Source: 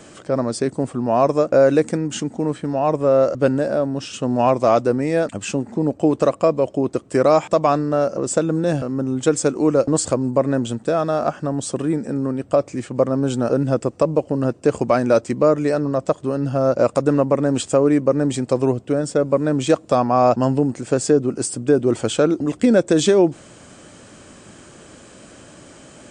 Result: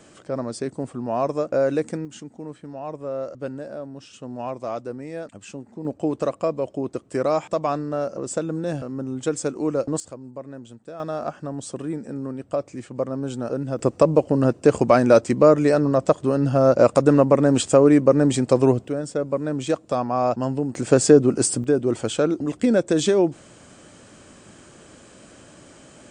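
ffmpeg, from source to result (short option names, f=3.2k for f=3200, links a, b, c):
-af "asetnsamples=n=441:p=0,asendcmd='2.05 volume volume -14dB;5.85 volume volume -7dB;10 volume volume -18.5dB;11 volume volume -8dB;13.79 volume volume 1.5dB;18.88 volume volume -6.5dB;20.75 volume volume 3dB;21.64 volume volume -4dB',volume=-7dB"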